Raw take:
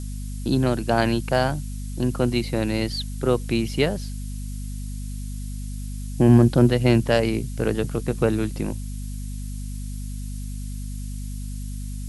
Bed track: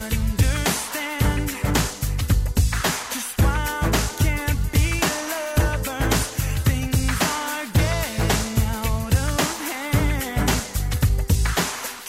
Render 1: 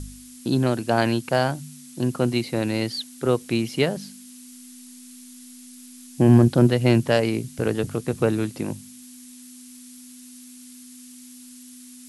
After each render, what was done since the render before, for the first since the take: de-hum 50 Hz, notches 4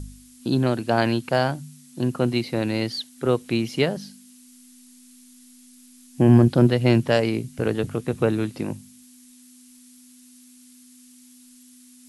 noise print and reduce 6 dB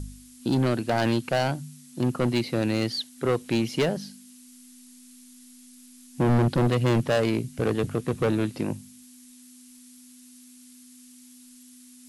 hard clip -17.5 dBFS, distortion -7 dB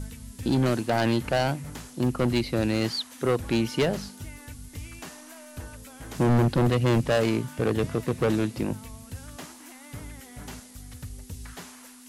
add bed track -20.5 dB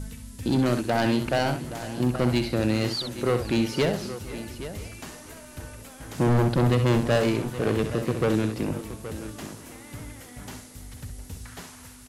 tapped delay 65/822 ms -8.5/-13 dB; warbling echo 0.493 s, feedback 53%, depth 102 cents, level -18 dB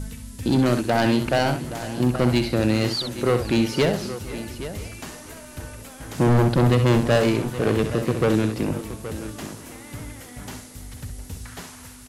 gain +3.5 dB

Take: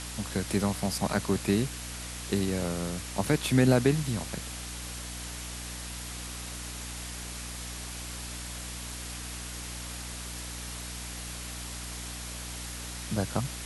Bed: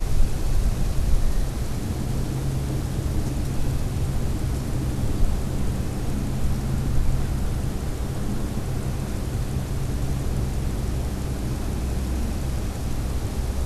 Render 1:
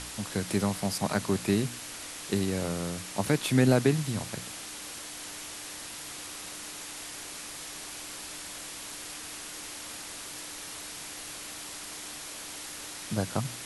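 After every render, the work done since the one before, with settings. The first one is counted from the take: de-hum 60 Hz, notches 4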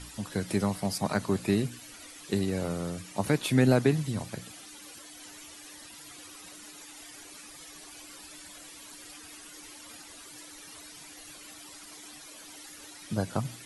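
denoiser 13 dB, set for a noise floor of -42 dBFS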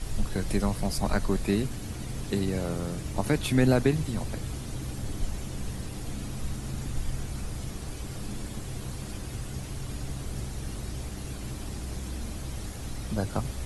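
add bed -10 dB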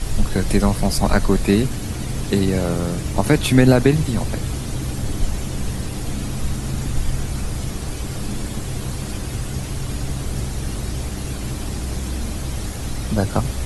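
gain +10 dB; limiter -2 dBFS, peak gain reduction 2 dB

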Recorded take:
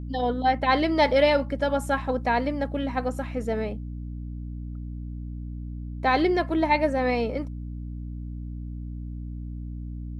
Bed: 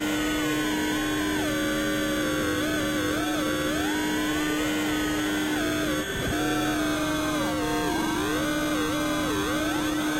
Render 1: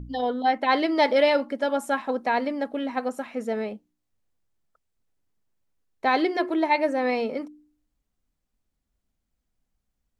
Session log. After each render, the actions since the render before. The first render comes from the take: de-hum 60 Hz, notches 6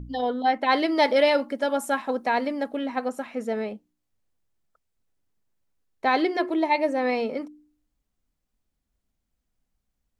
0.66–2.77 high shelf 7500 Hz +7.5 dB; 6.5–6.96 bell 1500 Hz -9 dB 0.38 oct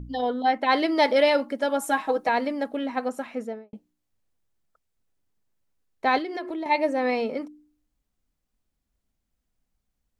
1.81–2.29 comb 6.3 ms, depth 81%; 3.31–3.73 studio fade out; 6.18–6.66 compressor 10:1, threshold -28 dBFS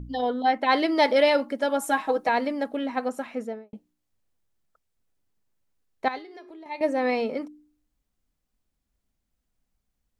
6.08–6.81 resonator 410 Hz, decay 0.34 s, mix 80%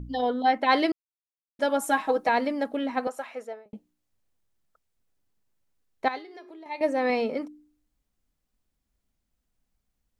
0.92–1.59 mute; 3.07–3.66 Chebyshev high-pass 620 Hz; 6.07–7.1 low shelf 120 Hz -10 dB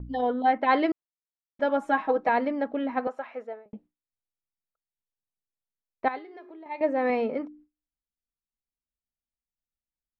gate with hold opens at -45 dBFS; LPF 2200 Hz 12 dB/oct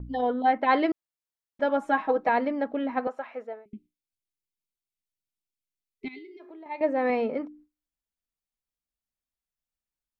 3.65–6.4 spectral gain 430–2000 Hz -30 dB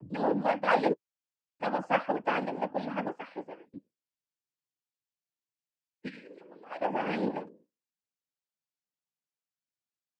flange 0.62 Hz, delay 8 ms, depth 1.1 ms, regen +28%; noise vocoder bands 8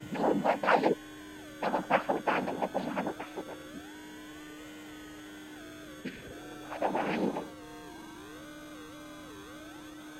add bed -20.5 dB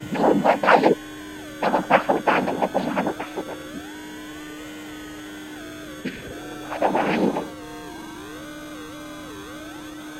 gain +10 dB

